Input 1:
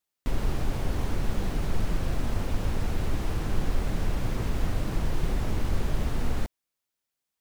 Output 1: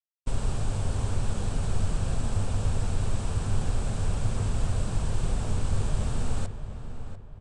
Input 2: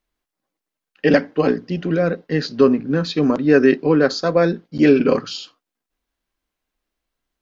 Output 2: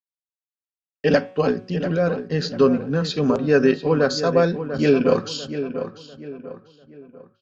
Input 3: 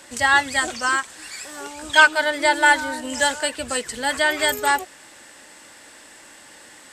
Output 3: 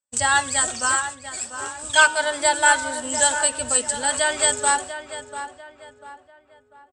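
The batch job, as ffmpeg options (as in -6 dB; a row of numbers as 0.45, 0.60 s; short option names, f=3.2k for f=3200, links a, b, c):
-filter_complex "[0:a]bandreject=f=185.7:t=h:w=4,bandreject=f=371.4:t=h:w=4,bandreject=f=557.1:t=h:w=4,bandreject=f=742.8:t=h:w=4,bandreject=f=928.5:t=h:w=4,bandreject=f=1.1142k:t=h:w=4,bandreject=f=1.2999k:t=h:w=4,bandreject=f=1.4856k:t=h:w=4,bandreject=f=1.6713k:t=h:w=4,bandreject=f=1.857k:t=h:w=4,bandreject=f=2.0427k:t=h:w=4,bandreject=f=2.2284k:t=h:w=4,bandreject=f=2.4141k:t=h:w=4,bandreject=f=2.5998k:t=h:w=4,bandreject=f=2.7855k:t=h:w=4,bandreject=f=2.9712k:t=h:w=4,bandreject=f=3.1569k:t=h:w=4,bandreject=f=3.3426k:t=h:w=4,bandreject=f=3.5283k:t=h:w=4,agate=range=-48dB:threshold=-35dB:ratio=16:detection=peak,equalizer=f=100:t=o:w=0.33:g=9,equalizer=f=315:t=o:w=0.33:g=-9,equalizer=f=2k:t=o:w=0.33:g=-8,equalizer=f=8k:t=o:w=0.33:g=12,asplit=2[a][b];[b]adelay=694,lowpass=f=2.5k:p=1,volume=-10dB,asplit=2[c][d];[d]adelay=694,lowpass=f=2.5k:p=1,volume=0.39,asplit=2[e][f];[f]adelay=694,lowpass=f=2.5k:p=1,volume=0.39,asplit=2[g][h];[h]adelay=694,lowpass=f=2.5k:p=1,volume=0.39[i];[a][c][e][g][i]amix=inputs=5:normalize=0,aresample=22050,aresample=44100,volume=-1dB"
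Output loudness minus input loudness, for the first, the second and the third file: +1.0, -3.0, -0.5 LU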